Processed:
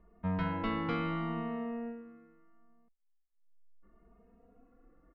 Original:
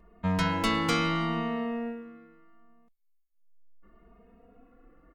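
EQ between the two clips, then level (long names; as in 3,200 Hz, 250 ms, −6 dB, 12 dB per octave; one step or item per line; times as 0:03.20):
Chebyshev low-pass filter 6,100 Hz, order 2
high-frequency loss of the air 420 metres
high-shelf EQ 4,400 Hz −7 dB
−4.0 dB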